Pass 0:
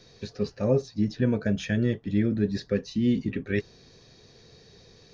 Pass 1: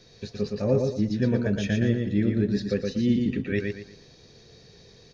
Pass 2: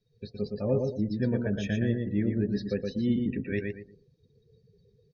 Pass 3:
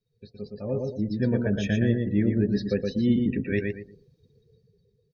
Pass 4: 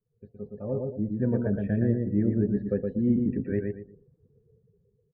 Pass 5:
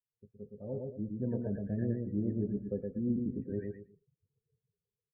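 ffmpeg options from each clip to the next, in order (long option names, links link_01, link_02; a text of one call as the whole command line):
ffmpeg -i in.wav -filter_complex "[0:a]equalizer=frequency=1100:width_type=o:width=0.77:gain=-2.5,asplit=2[link_01][link_02];[link_02]aecho=0:1:117|234|351|468:0.631|0.196|0.0606|0.0188[link_03];[link_01][link_03]amix=inputs=2:normalize=0" out.wav
ffmpeg -i in.wav -af "afftdn=noise_reduction=27:noise_floor=-42,volume=-4dB" out.wav
ffmpeg -i in.wav -af "dynaudnorm=framelen=220:gausssize=9:maxgain=11dB,volume=-6dB" out.wav
ffmpeg -i in.wav -af "lowpass=frequency=1400:width=0.5412,lowpass=frequency=1400:width=1.3066,volume=-1.5dB" out.wav
ffmpeg -i in.wav -filter_complex "[0:a]acrossover=split=1500[link_01][link_02];[link_02]adelay=90[link_03];[link_01][link_03]amix=inputs=2:normalize=0,afftdn=noise_reduction=18:noise_floor=-43,volume=-8.5dB" out.wav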